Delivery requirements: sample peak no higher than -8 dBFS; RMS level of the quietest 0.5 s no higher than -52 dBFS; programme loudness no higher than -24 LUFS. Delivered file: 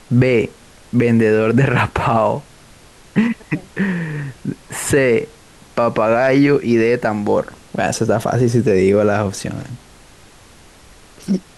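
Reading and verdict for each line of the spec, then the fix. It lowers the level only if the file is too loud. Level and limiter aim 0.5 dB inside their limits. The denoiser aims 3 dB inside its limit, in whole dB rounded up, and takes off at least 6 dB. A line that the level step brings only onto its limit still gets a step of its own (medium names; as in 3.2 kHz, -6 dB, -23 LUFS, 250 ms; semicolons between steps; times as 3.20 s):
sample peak -4.0 dBFS: fail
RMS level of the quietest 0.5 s -44 dBFS: fail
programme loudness -17.0 LUFS: fail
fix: noise reduction 6 dB, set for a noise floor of -44 dBFS; trim -7.5 dB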